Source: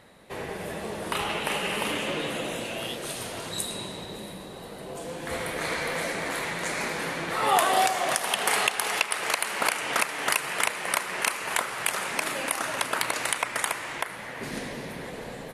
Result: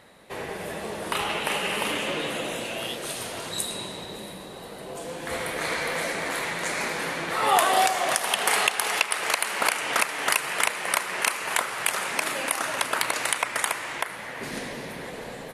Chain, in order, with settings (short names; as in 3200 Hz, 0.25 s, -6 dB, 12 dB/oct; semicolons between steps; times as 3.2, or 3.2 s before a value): low shelf 280 Hz -4.5 dB; gain +2 dB